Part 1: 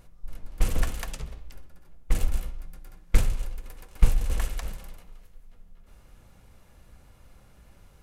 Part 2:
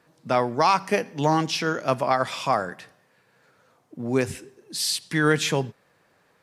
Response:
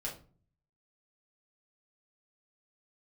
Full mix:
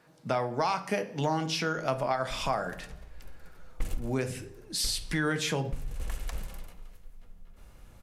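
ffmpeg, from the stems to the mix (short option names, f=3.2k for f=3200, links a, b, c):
-filter_complex "[0:a]adelay=1700,volume=0.5dB[a];[1:a]volume=-2.5dB,asplit=3[b][c][d];[c]volume=-5dB[e];[d]apad=whole_len=428999[f];[a][f]sidechaincompress=threshold=-39dB:ratio=8:attack=41:release=661[g];[2:a]atrim=start_sample=2205[h];[e][h]afir=irnorm=-1:irlink=0[i];[g][b][i]amix=inputs=3:normalize=0,acompressor=threshold=-29dB:ratio=2.5"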